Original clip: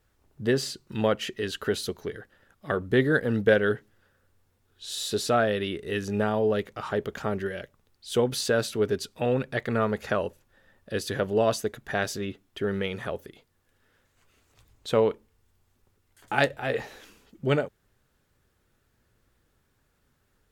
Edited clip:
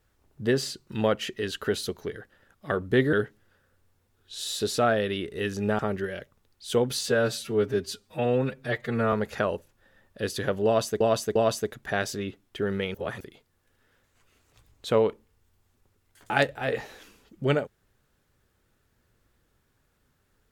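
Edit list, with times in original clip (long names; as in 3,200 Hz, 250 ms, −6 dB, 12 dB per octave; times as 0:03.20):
0:03.13–0:03.64: remove
0:06.30–0:07.21: remove
0:08.43–0:09.84: time-stretch 1.5×
0:11.37–0:11.72: repeat, 3 plays
0:12.96–0:13.22: reverse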